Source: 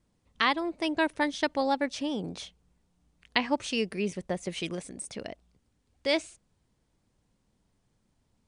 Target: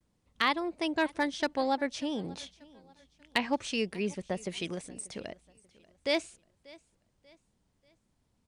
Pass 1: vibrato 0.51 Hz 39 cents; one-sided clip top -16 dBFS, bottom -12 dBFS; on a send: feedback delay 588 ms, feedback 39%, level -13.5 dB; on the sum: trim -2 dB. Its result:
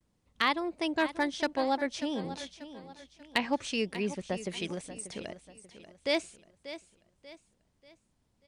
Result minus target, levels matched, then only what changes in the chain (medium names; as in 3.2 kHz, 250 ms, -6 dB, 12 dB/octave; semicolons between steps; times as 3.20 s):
echo-to-direct +9.5 dB
change: feedback delay 588 ms, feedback 39%, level -23 dB